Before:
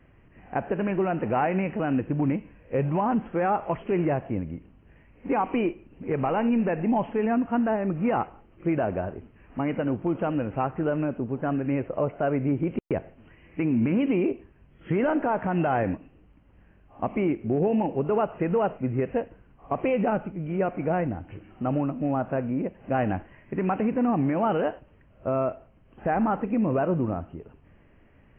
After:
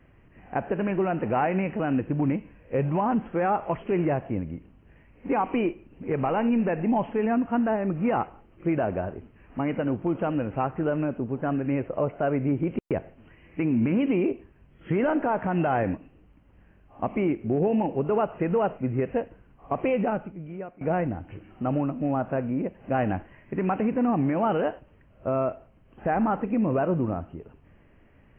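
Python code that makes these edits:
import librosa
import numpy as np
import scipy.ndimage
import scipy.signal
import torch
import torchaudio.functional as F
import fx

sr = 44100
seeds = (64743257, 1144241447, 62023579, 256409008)

y = fx.edit(x, sr, fx.fade_out_to(start_s=19.93, length_s=0.88, floor_db=-22.0), tone=tone)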